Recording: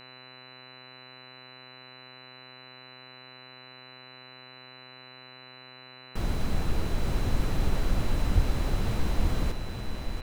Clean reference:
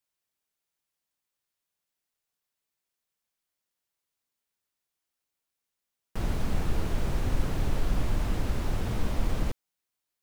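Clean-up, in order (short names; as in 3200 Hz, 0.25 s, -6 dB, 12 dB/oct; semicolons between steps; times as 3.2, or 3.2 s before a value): de-hum 127.9 Hz, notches 23; notch 4000 Hz, Q 30; de-plosive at 8.34; inverse comb 0.878 s -6 dB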